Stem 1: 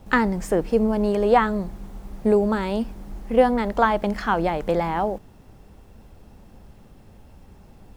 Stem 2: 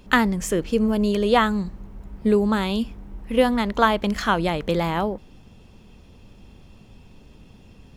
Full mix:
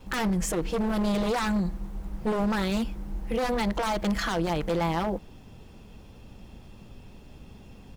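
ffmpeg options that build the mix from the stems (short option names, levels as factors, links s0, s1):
-filter_complex "[0:a]volume=0.596[s0];[1:a]aeval=exprs='0.119*(abs(mod(val(0)/0.119+3,4)-2)-1)':c=same,adelay=5.8,volume=0.891[s1];[s0][s1]amix=inputs=2:normalize=0,alimiter=limit=0.106:level=0:latency=1:release=35"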